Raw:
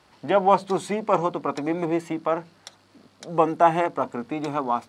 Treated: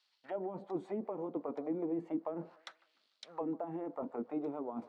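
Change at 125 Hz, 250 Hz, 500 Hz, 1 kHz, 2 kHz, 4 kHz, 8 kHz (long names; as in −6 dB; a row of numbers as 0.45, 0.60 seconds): −17.0 dB, −10.5 dB, −16.0 dB, −23.5 dB, −24.5 dB, −17.5 dB, below −20 dB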